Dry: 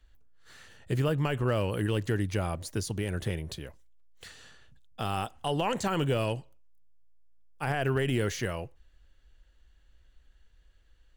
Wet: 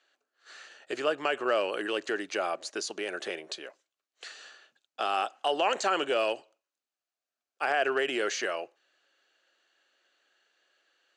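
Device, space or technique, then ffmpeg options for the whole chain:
phone speaker on a table: -af "highpass=frequency=420:width=0.5412,highpass=frequency=420:width=1.3066,equalizer=frequency=480:width_type=q:width=4:gain=-7,equalizer=frequency=950:width_type=q:width=4:gain=-8,equalizer=frequency=2000:width_type=q:width=4:gain=-5,equalizer=frequency=3400:width_type=q:width=4:gain=-5,equalizer=frequency=5400:width_type=q:width=4:gain=-4,lowpass=frequency=6700:width=0.5412,lowpass=frequency=6700:width=1.3066,volume=7.5dB"

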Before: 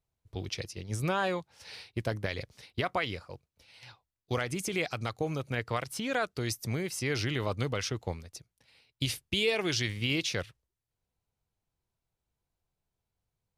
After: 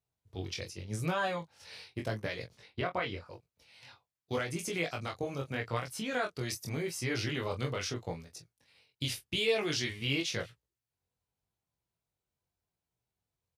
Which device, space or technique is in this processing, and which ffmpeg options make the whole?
double-tracked vocal: -filter_complex "[0:a]asettb=1/sr,asplit=3[link_01][link_02][link_03];[link_01]atrim=end=2.554[link_04];[link_02]atrim=start=2.55:end=3.26,asetpts=PTS-STARTPTS,afade=type=in:duration=0.004:curve=qsin,afade=type=out:start_time=0.706:duration=0.004:curve=qsin,aemphasis=mode=reproduction:type=50fm[link_05];[link_03]atrim=start=3.256[link_06];[link_04][link_05]acrossfade=duration=0.004:curve1=hsin:curve2=qsin[link_07];[link_07][link_06]acrossfade=duration=0.004:curve1=qsin:curve2=hsin,asplit=2[link_08][link_09];[link_09]adelay=24,volume=-8dB[link_10];[link_08][link_10]amix=inputs=2:normalize=0,flanger=delay=17:depth=5.3:speed=0.85,highpass=66"

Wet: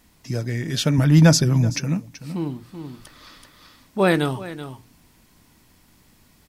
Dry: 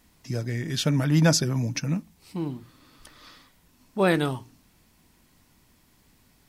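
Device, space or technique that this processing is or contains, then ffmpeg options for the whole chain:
ducked delay: -filter_complex "[0:a]asplit=3[link_01][link_02][link_03];[link_02]adelay=380,volume=-4dB[link_04];[link_03]apad=whole_len=302698[link_05];[link_04][link_05]sidechaincompress=threshold=-44dB:ratio=3:attack=16:release=404[link_06];[link_01][link_06]amix=inputs=2:normalize=0,asettb=1/sr,asplit=3[link_07][link_08][link_09];[link_07]atrim=end=0.984[link_10];[link_08]atrim=start=0.98:end=1.7,asetpts=PTS-STARTPTS,afade=type=in:duration=0.004:curve=qsin,afade=type=out:start_time=0.716:duration=0.004:curve=qsin,lowshelf=frequency=130:gain=10[link_11];[link_09]atrim=start=1.696[link_12];[link_10][link_11]acrossfade=duration=0.004:curve1=hsin:curve2=qsin[link_13];[link_13][link_12]acrossfade=duration=0.004:curve1=qsin:curve2=hsin,volume=3.5dB"

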